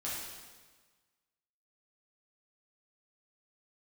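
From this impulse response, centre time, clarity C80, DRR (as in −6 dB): 88 ms, 2.0 dB, −8.0 dB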